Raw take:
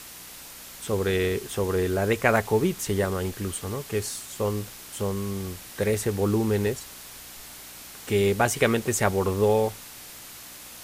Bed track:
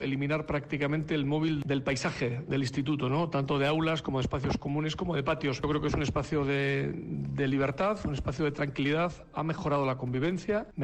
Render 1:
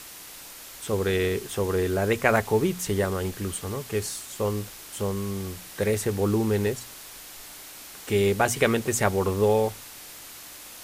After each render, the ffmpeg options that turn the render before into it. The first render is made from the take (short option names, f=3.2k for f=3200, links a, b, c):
-af "bandreject=f=60:t=h:w=4,bandreject=f=120:t=h:w=4,bandreject=f=180:t=h:w=4,bandreject=f=240:t=h:w=4"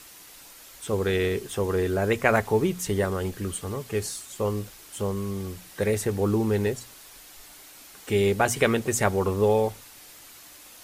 -af "afftdn=nr=6:nf=-44"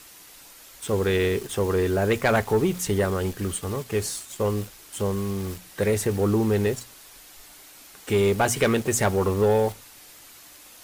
-filter_complex "[0:a]asplit=2[a][b];[b]acrusher=bits=5:mix=0:aa=0.000001,volume=-8dB[c];[a][c]amix=inputs=2:normalize=0,asoftclip=type=tanh:threshold=-12.5dB"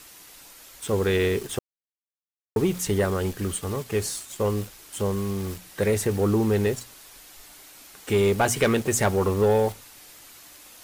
-filter_complex "[0:a]asplit=3[a][b][c];[a]atrim=end=1.59,asetpts=PTS-STARTPTS,afade=t=out:st=1.586:d=0.004:c=hsin[d];[b]atrim=start=1.59:end=2.56,asetpts=PTS-STARTPTS,volume=0[e];[c]atrim=start=2.56,asetpts=PTS-STARTPTS,afade=t=in:d=0.004:c=hsin[f];[d][e][f]concat=n=3:v=0:a=1"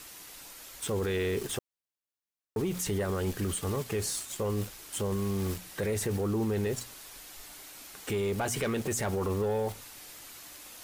-af "acompressor=threshold=-24dB:ratio=4,alimiter=limit=-24dB:level=0:latency=1:release=11"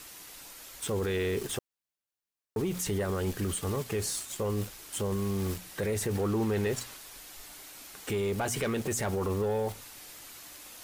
-filter_complex "[0:a]asettb=1/sr,asplit=3[a][b][c];[a]atrim=end=6.154[d];[b]atrim=start=6.15:end=6.97,asetpts=PTS-STARTPTS,afade=t=in:d=0.004:c=qsin,afade=t=out:st=0.816:d=0.004:c=qsin,equalizer=f=1.7k:t=o:w=2.9:g=4.5[e];[c]atrim=start=6.966[f];[d][e]acrossfade=d=0.004:c1=hsin:c2=qsin[g];[g][f]acrossfade=d=0.004:c1=qsin:c2=hsin"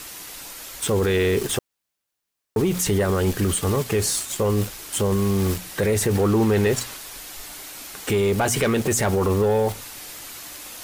-af "volume=10dB"